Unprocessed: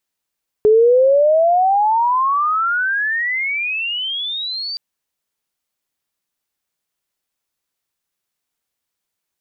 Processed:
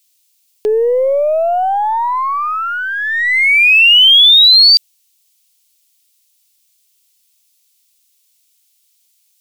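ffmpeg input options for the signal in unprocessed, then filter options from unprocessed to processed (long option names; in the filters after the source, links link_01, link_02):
-f lavfi -i "aevalsrc='pow(10,(-7.5-15*t/4.12)/20)*sin(2*PI*420*4.12/log(4700/420)*(exp(log(4700/420)*t/4.12)-1))':duration=4.12:sample_rate=44100"
-af "highpass=360,aexciter=amount=8.2:drive=4.2:freq=2300,aeval=exprs='0.708*(cos(1*acos(clip(val(0)/0.708,-1,1)))-cos(1*PI/2))+0.0112*(cos(8*acos(clip(val(0)/0.708,-1,1)))-cos(8*PI/2))':channel_layout=same"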